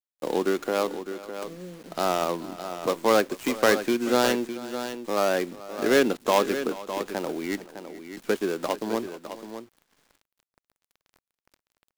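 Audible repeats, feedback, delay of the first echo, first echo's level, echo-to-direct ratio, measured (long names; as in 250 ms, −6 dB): 2, repeats not evenly spaced, 432 ms, −18.0 dB, −10.0 dB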